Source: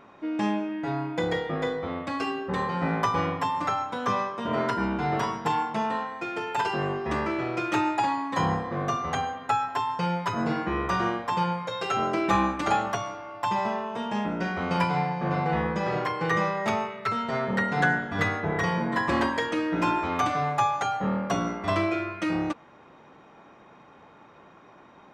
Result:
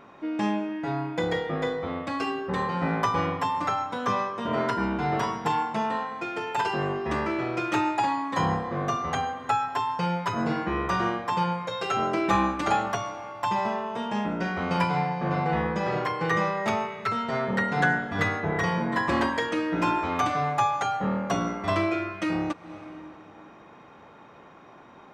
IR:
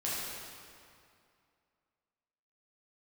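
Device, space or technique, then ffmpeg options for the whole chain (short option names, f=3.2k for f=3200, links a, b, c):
ducked reverb: -filter_complex "[0:a]asplit=3[a][b][c];[1:a]atrim=start_sample=2205[d];[b][d]afir=irnorm=-1:irlink=0[e];[c]apad=whole_len=1108664[f];[e][f]sidechaincompress=threshold=-42dB:ratio=8:attack=7.2:release=182,volume=-11.5dB[g];[a][g]amix=inputs=2:normalize=0"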